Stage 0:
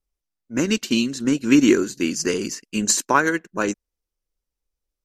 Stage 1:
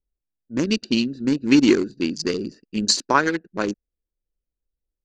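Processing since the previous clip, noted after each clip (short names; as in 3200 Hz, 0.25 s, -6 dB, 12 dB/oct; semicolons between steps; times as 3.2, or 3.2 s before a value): Wiener smoothing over 41 samples; LPF 5700 Hz 12 dB/oct; bell 4500 Hz +14 dB 0.4 oct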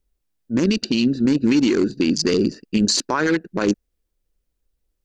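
in parallel at +3 dB: negative-ratio compressor -25 dBFS, ratio -1; on the sum: limiter -9 dBFS, peak gain reduction 9 dB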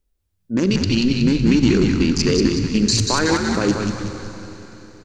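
on a send: frequency-shifting echo 0.186 s, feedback 48%, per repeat -100 Hz, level -4 dB; on the sum: Schroeder reverb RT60 3.9 s, combs from 32 ms, DRR 8.5 dB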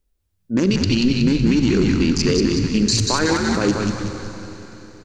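limiter -9 dBFS, peak gain reduction 5 dB; gain +1 dB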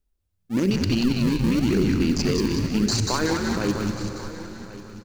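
in parallel at -9 dB: decimation with a swept rate 37×, swing 160% 0.9 Hz; on the sum: echo 1.09 s -16.5 dB; gain -6.5 dB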